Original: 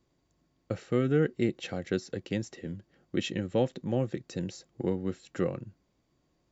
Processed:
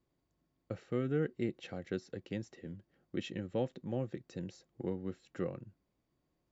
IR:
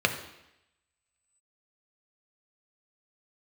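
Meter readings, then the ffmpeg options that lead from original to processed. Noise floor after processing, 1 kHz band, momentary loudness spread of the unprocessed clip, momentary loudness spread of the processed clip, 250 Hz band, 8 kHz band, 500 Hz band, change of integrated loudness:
-82 dBFS, -8.0 dB, 13 LU, 13 LU, -7.5 dB, n/a, -7.5 dB, -7.5 dB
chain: -af "highshelf=f=5.4k:g=-9,volume=-7.5dB"

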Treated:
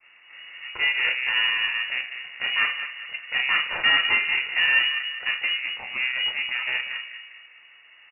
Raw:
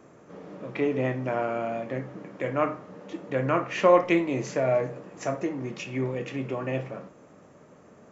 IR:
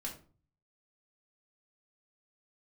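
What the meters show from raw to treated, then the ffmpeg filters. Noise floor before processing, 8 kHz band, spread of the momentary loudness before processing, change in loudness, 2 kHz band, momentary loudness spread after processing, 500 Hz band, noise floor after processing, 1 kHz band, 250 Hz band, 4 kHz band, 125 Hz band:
-54 dBFS, n/a, 19 LU, +5.0 dB, +15.5 dB, 14 LU, -21.5 dB, -53 dBFS, -5.0 dB, -23.0 dB, +23.5 dB, under -20 dB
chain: -filter_complex "[0:a]adynamicequalizer=threshold=0.0251:dfrequency=550:dqfactor=0.72:tfrequency=550:tqfactor=0.72:attack=5:release=100:ratio=0.375:range=2:mode=boostabove:tftype=bell,aresample=8000,asoftclip=type=hard:threshold=-15dB,aresample=44100,asplit=2[a][b];[b]adelay=201,lowpass=f=1.2k:p=1,volume=-9dB,asplit=2[c][d];[d]adelay=201,lowpass=f=1.2k:p=1,volume=0.51,asplit=2[e][f];[f]adelay=201,lowpass=f=1.2k:p=1,volume=0.51,asplit=2[g][h];[h]adelay=201,lowpass=f=1.2k:p=1,volume=0.51,asplit=2[i][j];[j]adelay=201,lowpass=f=1.2k:p=1,volume=0.51,asplit=2[k][l];[l]adelay=201,lowpass=f=1.2k:p=1,volume=0.51[m];[a][c][e][g][i][k][m]amix=inputs=7:normalize=0,aeval=exprs='0.282*(cos(1*acos(clip(val(0)/0.282,-1,1)))-cos(1*PI/2))+0.02*(cos(8*acos(clip(val(0)/0.282,-1,1)))-cos(8*PI/2))':c=same,aeval=exprs='val(0)*sin(2*PI*480*n/s)':c=same,asplit=2[n][o];[1:a]atrim=start_sample=2205,asetrate=79380,aresample=44100[p];[o][p]afir=irnorm=-1:irlink=0,volume=-2dB[q];[n][q]amix=inputs=2:normalize=0,lowpass=f=2.5k:t=q:w=0.5098,lowpass=f=2.5k:t=q:w=0.6013,lowpass=f=2.5k:t=q:w=0.9,lowpass=f=2.5k:t=q:w=2.563,afreqshift=-2900"

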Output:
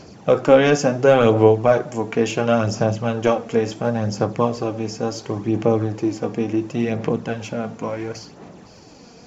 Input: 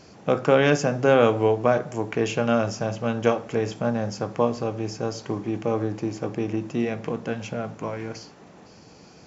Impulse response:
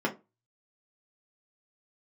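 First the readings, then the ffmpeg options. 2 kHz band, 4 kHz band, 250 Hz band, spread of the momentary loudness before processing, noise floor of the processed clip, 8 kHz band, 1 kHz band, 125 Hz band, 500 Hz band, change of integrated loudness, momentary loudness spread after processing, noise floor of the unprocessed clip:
+2.5 dB, +3.5 dB, +4.5 dB, 12 LU, -45 dBFS, n/a, +4.0 dB, +5.0 dB, +5.0 dB, +4.5 dB, 13 LU, -49 dBFS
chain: -af "equalizer=f=1.7k:t=o:w=1.6:g=-2.5,apsyclip=9dB,aphaser=in_gain=1:out_gain=1:delay=4.3:decay=0.41:speed=0.71:type=sinusoidal,volume=-5dB"

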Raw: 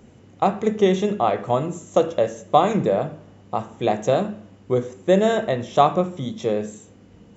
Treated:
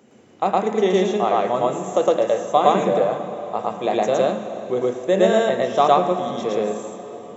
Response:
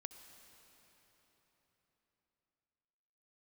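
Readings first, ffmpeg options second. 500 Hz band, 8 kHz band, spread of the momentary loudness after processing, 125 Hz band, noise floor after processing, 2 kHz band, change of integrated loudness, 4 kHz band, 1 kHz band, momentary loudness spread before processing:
+2.5 dB, n/a, 10 LU, -5.0 dB, -50 dBFS, +2.5 dB, +1.5 dB, +2.5 dB, +2.5 dB, 11 LU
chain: -filter_complex "[0:a]highpass=240,asplit=2[a][b];[1:a]atrim=start_sample=2205,adelay=112[c];[b][c]afir=irnorm=-1:irlink=0,volume=6.5dB[d];[a][d]amix=inputs=2:normalize=0,volume=-1.5dB"

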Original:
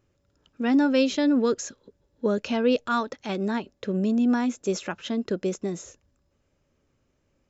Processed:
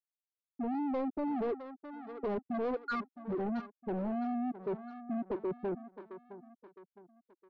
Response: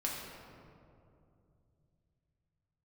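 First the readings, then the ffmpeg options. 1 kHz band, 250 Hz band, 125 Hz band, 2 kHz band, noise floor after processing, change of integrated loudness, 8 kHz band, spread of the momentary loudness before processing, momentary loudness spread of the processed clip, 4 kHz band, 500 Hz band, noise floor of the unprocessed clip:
-7.0 dB, -12.0 dB, -11.0 dB, -13.0 dB, under -85 dBFS, -11.5 dB, n/a, 9 LU, 13 LU, -24.0 dB, -10.0 dB, -72 dBFS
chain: -filter_complex "[0:a]acrossover=split=240|3000[a][b][c];[b]acompressor=threshold=-24dB:ratio=8[d];[a][d][c]amix=inputs=3:normalize=0,asplit=2[e][f];[f]aeval=exprs='val(0)*gte(abs(val(0)),0.0224)':c=same,volume=-11.5dB[g];[e][g]amix=inputs=2:normalize=0,afftfilt=real='re*gte(hypot(re,im),0.355)':imag='im*gte(hypot(re,im),0.355)':win_size=1024:overlap=0.75,aresample=16000,asoftclip=type=tanh:threshold=-29.5dB,aresample=44100,aecho=1:1:662|1324|1986:0.0708|0.0276|0.0108,aexciter=amount=3.8:drive=4.7:freq=4k,equalizer=f=100:w=0.73:g=-6,asplit=2[h][i];[i]highpass=f=720:p=1,volume=23dB,asoftclip=type=tanh:threshold=-27dB[j];[h][j]amix=inputs=2:normalize=0,lowpass=f=1.3k:p=1,volume=-6dB,lowpass=f=5.3k:w=0.5412,lowpass=f=5.3k:w=1.3066"

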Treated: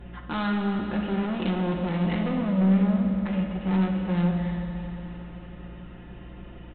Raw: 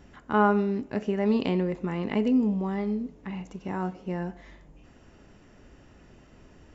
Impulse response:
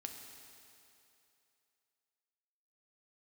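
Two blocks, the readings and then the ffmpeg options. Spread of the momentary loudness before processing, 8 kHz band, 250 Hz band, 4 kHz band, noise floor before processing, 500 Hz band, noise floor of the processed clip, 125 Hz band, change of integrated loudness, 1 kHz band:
13 LU, n/a, +3.0 dB, +4.5 dB, -55 dBFS, -3.5 dB, -43 dBFS, +7.5 dB, +1.5 dB, -3.0 dB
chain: -filter_complex "[0:a]aecho=1:1:5.7:0.82,aeval=exprs='val(0)+0.00447*(sin(2*PI*60*n/s)+sin(2*PI*2*60*n/s)/2+sin(2*PI*3*60*n/s)/3+sin(2*PI*4*60*n/s)/4+sin(2*PI*5*60*n/s)/5)':c=same,acompressor=threshold=-22dB:ratio=6,aresample=8000,asoftclip=type=hard:threshold=-30.5dB,aresample=44100[a];[1:a]atrim=start_sample=2205,asetrate=30429,aresample=44100[b];[a][b]afir=irnorm=-1:irlink=0,volume=7dB"

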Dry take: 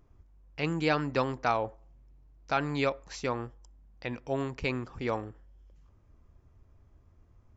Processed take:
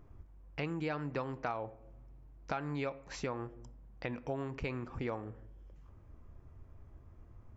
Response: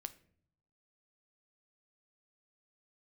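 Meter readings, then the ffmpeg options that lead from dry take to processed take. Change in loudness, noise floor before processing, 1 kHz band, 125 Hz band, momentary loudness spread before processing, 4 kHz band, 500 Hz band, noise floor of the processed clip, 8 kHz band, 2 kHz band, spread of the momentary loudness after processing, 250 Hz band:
-8.0 dB, -62 dBFS, -9.0 dB, -5.0 dB, 11 LU, -11.0 dB, -7.5 dB, -58 dBFS, n/a, -8.5 dB, 21 LU, -6.5 dB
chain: -filter_complex "[0:a]asplit=2[a][b];[1:a]atrim=start_sample=2205,lowpass=2.9k[c];[b][c]afir=irnorm=-1:irlink=0,volume=4.5dB[d];[a][d]amix=inputs=2:normalize=0,acompressor=threshold=-35dB:ratio=4,volume=-1.5dB"

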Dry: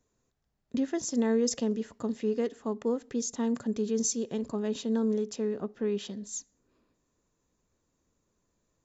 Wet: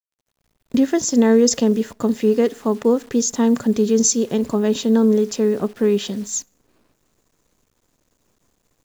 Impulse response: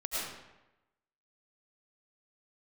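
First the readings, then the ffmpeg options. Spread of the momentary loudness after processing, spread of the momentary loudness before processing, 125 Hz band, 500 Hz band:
7 LU, 8 LU, +13.0 dB, +13.0 dB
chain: -af "dynaudnorm=f=210:g=3:m=13dB,acrusher=bits=8:dc=4:mix=0:aa=0.000001"

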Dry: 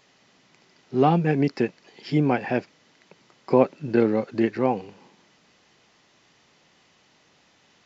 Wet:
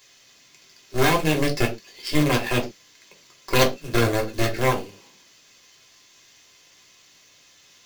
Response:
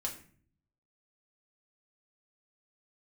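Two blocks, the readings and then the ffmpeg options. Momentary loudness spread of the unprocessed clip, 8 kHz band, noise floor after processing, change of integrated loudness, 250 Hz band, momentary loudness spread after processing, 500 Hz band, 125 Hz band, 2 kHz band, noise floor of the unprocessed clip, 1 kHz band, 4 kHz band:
8 LU, n/a, -55 dBFS, +0.5 dB, -2.5 dB, 10 LU, -1.0 dB, +1.5 dB, +8.5 dB, -61 dBFS, +0.5 dB, +15.0 dB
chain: -filter_complex "[0:a]aeval=exprs='0.596*(cos(1*acos(clip(val(0)/0.596,-1,1)))-cos(1*PI/2))+0.106*(cos(8*acos(clip(val(0)/0.596,-1,1)))-cos(8*PI/2))':c=same,crystalizer=i=8:c=0,acrusher=bits=2:mode=log:mix=0:aa=0.000001[a];[1:a]atrim=start_sample=2205,afade=t=out:st=0.31:d=0.01,atrim=end_sample=14112,asetrate=88200,aresample=44100[b];[a][b]afir=irnorm=-1:irlink=0"

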